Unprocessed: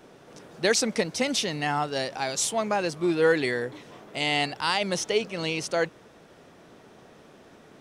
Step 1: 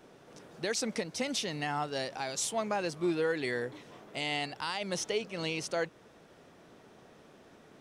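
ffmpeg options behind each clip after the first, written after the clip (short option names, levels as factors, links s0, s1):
-af "alimiter=limit=0.15:level=0:latency=1:release=250,volume=0.562"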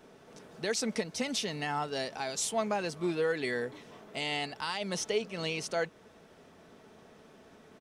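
-af "equalizer=f=86:w=5.7:g=6.5,aecho=1:1:4.6:0.31"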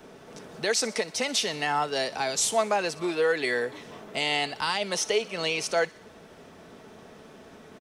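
-filter_complex "[0:a]acrossover=split=360|850|1800[s0][s1][s2][s3];[s0]acompressor=threshold=0.00355:ratio=6[s4];[s3]aecho=1:1:61|122|183|244|305:0.141|0.0819|0.0475|0.0276|0.016[s5];[s4][s1][s2][s5]amix=inputs=4:normalize=0,volume=2.37"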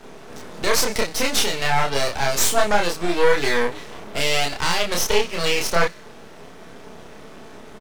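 -filter_complex "[0:a]aeval=exprs='max(val(0),0)':c=same,asplit=2[s0][s1];[s1]adelay=29,volume=0.794[s2];[s0][s2]amix=inputs=2:normalize=0,volume=2.66"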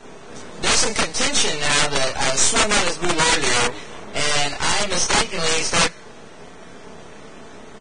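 -filter_complex "[0:a]acrossover=split=3400[s0][s1];[s0]aeval=exprs='(mod(3.55*val(0)+1,2)-1)/3.55':c=same[s2];[s2][s1]amix=inputs=2:normalize=0,volume=1.12" -ar 22050 -c:a libvorbis -b:a 16k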